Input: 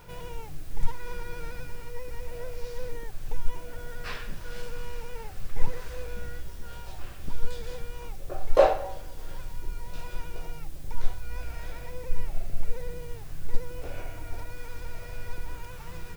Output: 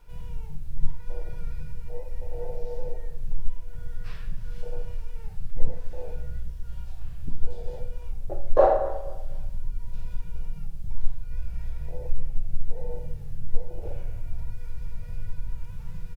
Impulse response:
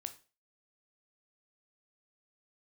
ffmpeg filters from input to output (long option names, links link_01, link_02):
-filter_complex "[0:a]afwtdn=0.0282,flanger=delay=6.7:depth=1.9:regen=-80:speed=0.77:shape=sinusoidal,bandreject=frequency=61.67:width_type=h:width=4,bandreject=frequency=123.34:width_type=h:width=4,bandreject=frequency=185.01:width_type=h:width=4,bandreject=frequency=246.68:width_type=h:width=4,bandreject=frequency=308.35:width_type=h:width=4,bandreject=frequency=370.02:width_type=h:width=4,bandreject=frequency=431.69:width_type=h:width=4,bandreject=frequency=493.36:width_type=h:width=4,bandreject=frequency=555.03:width_type=h:width=4,bandreject=frequency=616.7:width_type=h:width=4,bandreject=frequency=678.37:width_type=h:width=4,bandreject=frequency=740.04:width_type=h:width=4,bandreject=frequency=801.71:width_type=h:width=4,bandreject=frequency=863.38:width_type=h:width=4,bandreject=frequency=925.05:width_type=h:width=4,bandreject=frequency=986.72:width_type=h:width=4,bandreject=frequency=1048.39:width_type=h:width=4,bandreject=frequency=1110.06:width_type=h:width=4,bandreject=frequency=1171.73:width_type=h:width=4,bandreject=frequency=1233.4:width_type=h:width=4,bandreject=frequency=1295.07:width_type=h:width=4,bandreject=frequency=1356.74:width_type=h:width=4,bandreject=frequency=1418.41:width_type=h:width=4,bandreject=frequency=1480.08:width_type=h:width=4,bandreject=frequency=1541.75:width_type=h:width=4,bandreject=frequency=1603.42:width_type=h:width=4,bandreject=frequency=1665.09:width_type=h:width=4,bandreject=frequency=1726.76:width_type=h:width=4,bandreject=frequency=1788.43:width_type=h:width=4,bandreject=frequency=1850.1:width_type=h:width=4,bandreject=frequency=1911.77:width_type=h:width=4,bandreject=frequency=1973.44:width_type=h:width=4,bandreject=frequency=2035.11:width_type=h:width=4,bandreject=frequency=2096.78:width_type=h:width=4,bandreject=frequency=2158.45:width_type=h:width=4,asplit=2[link_01][link_02];[link_02]adelay=242,lowpass=frequency=2000:poles=1,volume=-18.5dB,asplit=2[link_03][link_04];[link_04]adelay=242,lowpass=frequency=2000:poles=1,volume=0.32,asplit=2[link_05][link_06];[link_06]adelay=242,lowpass=frequency=2000:poles=1,volume=0.32[link_07];[link_03][link_05][link_07]amix=inputs=3:normalize=0[link_08];[link_01][link_08]amix=inputs=2:normalize=0[link_09];[1:a]atrim=start_sample=2205,asetrate=28665,aresample=44100[link_10];[link_09][link_10]afir=irnorm=-1:irlink=0,asplit=2[link_11][link_12];[link_12]acompressor=threshold=-34dB:ratio=6,volume=-2dB[link_13];[link_11][link_13]amix=inputs=2:normalize=0,volume=6dB"